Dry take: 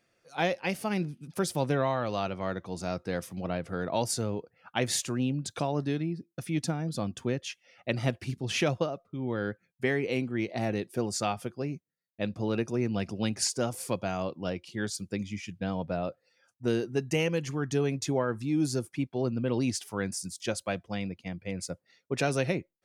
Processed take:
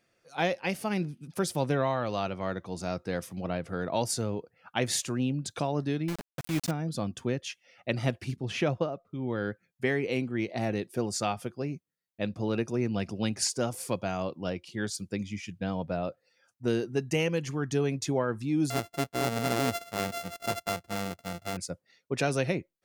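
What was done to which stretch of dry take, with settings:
6.08–6.71 s: word length cut 6-bit, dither none
8.36–9.07 s: treble shelf 3.7 kHz -11 dB
18.70–21.57 s: sorted samples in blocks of 64 samples

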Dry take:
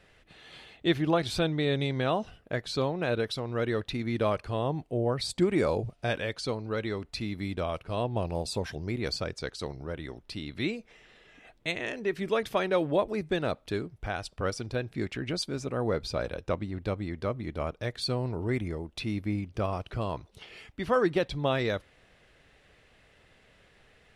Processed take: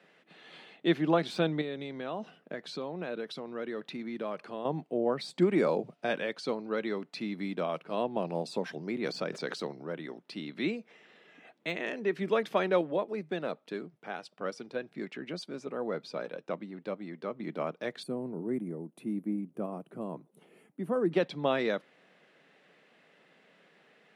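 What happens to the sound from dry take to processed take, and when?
1.61–4.65 s: compression 2.5:1, threshold -35 dBFS
9.07–9.79 s: swell ahead of each attack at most 22 dB/s
12.81–17.40 s: flange 1.9 Hz, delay 1.3 ms, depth 1.2 ms, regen +78%
18.03–21.12 s: FFT filter 270 Hz 0 dB, 5.1 kHz -22 dB, 9.8 kHz +7 dB
whole clip: steep high-pass 160 Hz 48 dB/octave; de-esser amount 80%; treble shelf 5.3 kHz -11.5 dB

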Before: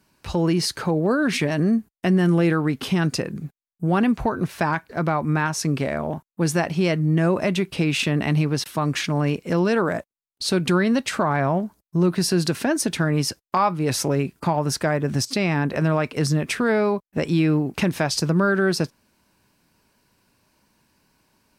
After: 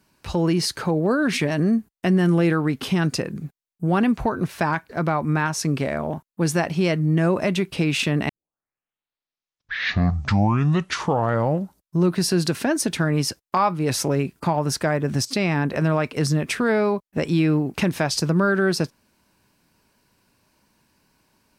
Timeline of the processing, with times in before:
8.29 s: tape start 3.70 s

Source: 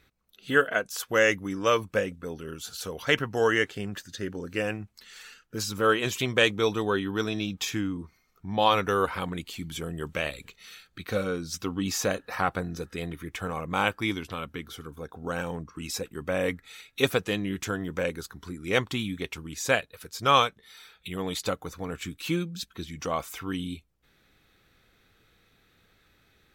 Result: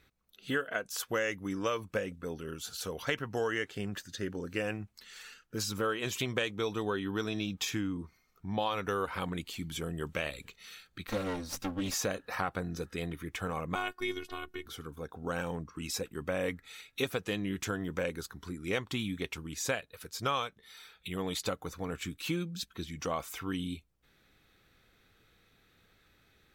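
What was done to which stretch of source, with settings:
11.07–11.94 s: comb filter that takes the minimum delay 3.7 ms
13.75–14.66 s: robot voice 365 Hz
whole clip: compression 6:1, threshold -26 dBFS; trim -2.5 dB

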